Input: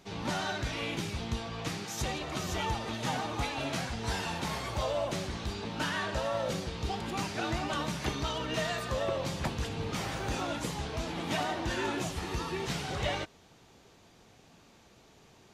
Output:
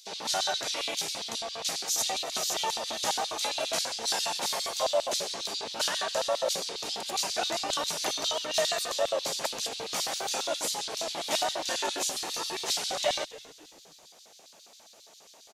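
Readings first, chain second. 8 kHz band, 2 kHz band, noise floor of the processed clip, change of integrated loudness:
+12.0 dB, -0.5 dB, -55 dBFS, +4.5 dB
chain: rattle on loud lows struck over -34 dBFS, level -39 dBFS; high-pass 150 Hz; tone controls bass +15 dB, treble +12 dB; LFO high-pass square 7.4 Hz 620–3900 Hz; frequency-shifting echo 274 ms, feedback 33%, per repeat -140 Hz, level -19 dB

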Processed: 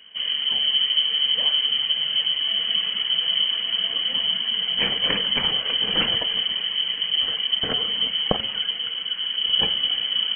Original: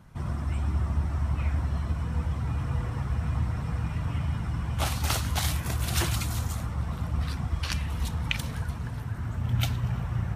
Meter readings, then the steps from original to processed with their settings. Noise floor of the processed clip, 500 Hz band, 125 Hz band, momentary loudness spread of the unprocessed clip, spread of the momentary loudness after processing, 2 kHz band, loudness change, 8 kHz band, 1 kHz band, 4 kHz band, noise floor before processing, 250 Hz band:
-30 dBFS, +7.0 dB, -17.5 dB, 5 LU, 4 LU, +7.5 dB, +9.5 dB, under -40 dB, 0.0 dB, +23.5 dB, -35 dBFS, -3.0 dB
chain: de-hum 159.9 Hz, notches 38; frequency inversion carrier 3.1 kHz; small resonant body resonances 210/460 Hz, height 11 dB, ringing for 35 ms; trim +4 dB

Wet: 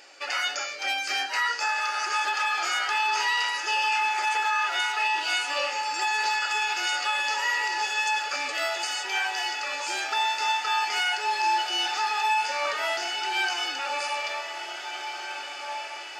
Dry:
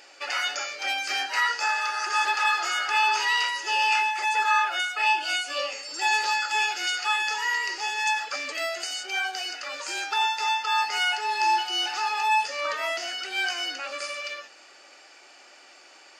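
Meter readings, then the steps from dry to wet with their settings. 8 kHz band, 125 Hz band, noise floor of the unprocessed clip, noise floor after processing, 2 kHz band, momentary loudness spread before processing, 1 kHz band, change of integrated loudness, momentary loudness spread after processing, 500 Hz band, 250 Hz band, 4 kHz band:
0.0 dB, no reading, -52 dBFS, -37 dBFS, -0.5 dB, 8 LU, -0.5 dB, -1.0 dB, 7 LU, +0.5 dB, +0.5 dB, 0.0 dB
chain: echo that smears into a reverb 1717 ms, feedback 60%, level -9 dB; peak limiter -16.5 dBFS, peak gain reduction 6 dB

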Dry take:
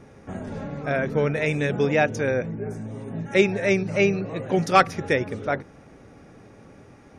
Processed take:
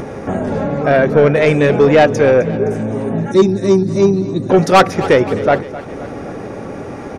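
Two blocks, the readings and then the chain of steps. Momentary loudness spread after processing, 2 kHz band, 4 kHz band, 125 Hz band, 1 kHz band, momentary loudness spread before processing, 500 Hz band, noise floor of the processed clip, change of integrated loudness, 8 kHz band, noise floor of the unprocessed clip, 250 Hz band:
17 LU, +6.0 dB, +8.5 dB, +10.0 dB, +9.5 dB, 14 LU, +12.0 dB, -28 dBFS, +10.5 dB, +8.0 dB, -50 dBFS, +11.5 dB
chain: time-frequency box 3.31–4.50 s, 390–3500 Hz -19 dB; peaking EQ 550 Hz +8 dB 2.9 oct; in parallel at -2 dB: upward compressor, threshold -17 dBFS; on the sum: saturation -5.5 dBFS, distortion -11 dB; feedback delay 259 ms, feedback 54%, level -16 dB; trim +2.5 dB

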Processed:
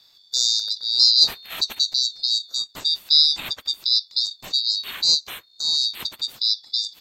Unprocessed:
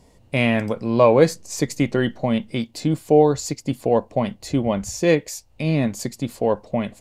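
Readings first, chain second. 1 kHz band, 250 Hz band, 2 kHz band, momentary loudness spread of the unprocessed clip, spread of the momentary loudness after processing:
-19.0 dB, under -30 dB, -11.0 dB, 11 LU, 11 LU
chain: split-band scrambler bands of 4 kHz; ring modulator with a swept carrier 420 Hz, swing 25%, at 0.29 Hz; trim +1 dB

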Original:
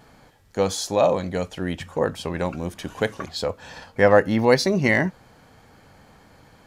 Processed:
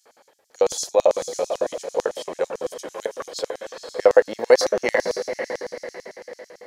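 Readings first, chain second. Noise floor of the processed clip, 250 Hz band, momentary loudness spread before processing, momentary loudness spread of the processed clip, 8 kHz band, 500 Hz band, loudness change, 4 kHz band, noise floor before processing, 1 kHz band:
-60 dBFS, -11.5 dB, 13 LU, 17 LU, +3.0 dB, +2.0 dB, -0.5 dB, -1.5 dB, -54 dBFS, -2.5 dB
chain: echo that smears into a reverb 524 ms, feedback 43%, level -7.5 dB; LFO high-pass square 9 Hz 490–6100 Hz; trim -2.5 dB

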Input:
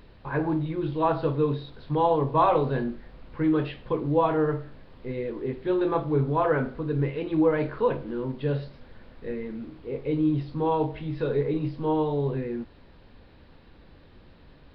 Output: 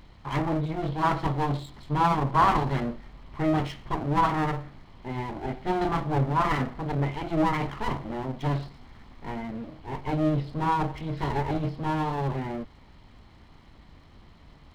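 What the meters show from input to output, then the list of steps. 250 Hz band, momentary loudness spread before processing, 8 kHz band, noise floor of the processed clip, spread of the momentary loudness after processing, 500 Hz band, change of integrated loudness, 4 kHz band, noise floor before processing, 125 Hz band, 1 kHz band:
-2.0 dB, 12 LU, no reading, -53 dBFS, 13 LU, -7.0 dB, -1.0 dB, +5.0 dB, -52 dBFS, +1.0 dB, +2.5 dB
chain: comb filter that takes the minimum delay 0.96 ms; trim +1.5 dB

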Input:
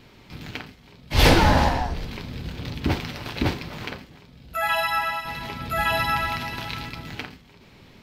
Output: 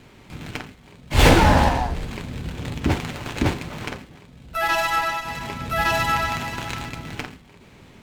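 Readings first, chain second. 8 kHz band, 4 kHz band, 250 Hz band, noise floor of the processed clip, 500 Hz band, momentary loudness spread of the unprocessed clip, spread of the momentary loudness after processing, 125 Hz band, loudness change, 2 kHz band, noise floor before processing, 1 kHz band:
+4.0 dB, 0.0 dB, +2.5 dB, -49 dBFS, +2.5 dB, 19 LU, 19 LU, +2.5 dB, +2.0 dB, +1.5 dB, -51 dBFS, +2.5 dB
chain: sliding maximum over 5 samples; trim +2.5 dB

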